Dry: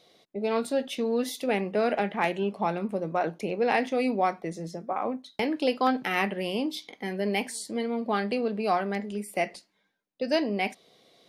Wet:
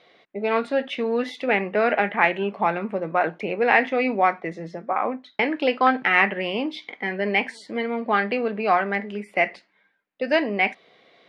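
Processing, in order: synth low-pass 2000 Hz, resonance Q 1.6; tilt +2 dB/oct; gain +5.5 dB

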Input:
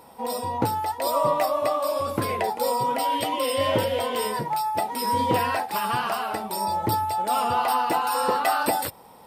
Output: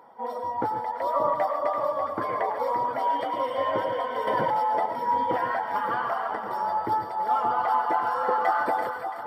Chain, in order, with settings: HPF 700 Hz 6 dB/oct; reverb removal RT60 0.82 s; polynomial smoothing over 41 samples; split-band echo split 1000 Hz, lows 0.578 s, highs 0.336 s, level -8 dB; reverb, pre-delay 83 ms, DRR 7 dB; 4.27–4.86 fast leveller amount 100%; gain +1.5 dB

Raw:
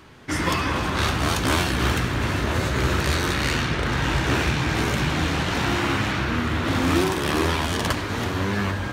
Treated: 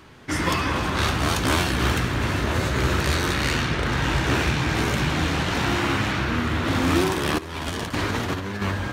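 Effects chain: 7.38–8.62 negative-ratio compressor -27 dBFS, ratio -0.5

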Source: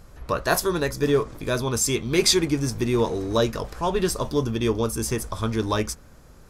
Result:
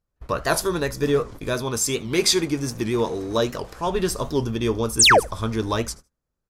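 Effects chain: gate -37 dBFS, range -33 dB; 1.53–3.87 low shelf 95 Hz -9 dB; 4.99–5.2 painted sound fall 440–9800 Hz -13 dBFS; feedback echo 75 ms, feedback 16%, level -23 dB; record warp 78 rpm, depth 160 cents

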